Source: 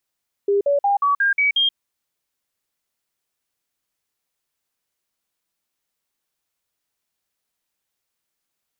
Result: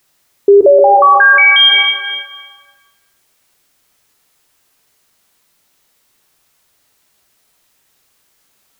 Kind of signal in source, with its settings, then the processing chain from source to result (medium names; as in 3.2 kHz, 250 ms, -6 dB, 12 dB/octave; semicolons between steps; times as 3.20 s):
stepped sine 402 Hz up, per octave 2, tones 7, 0.13 s, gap 0.05 s -14.5 dBFS
plate-style reverb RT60 1.7 s, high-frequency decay 0.7×, DRR 3 dB; loudness maximiser +19 dB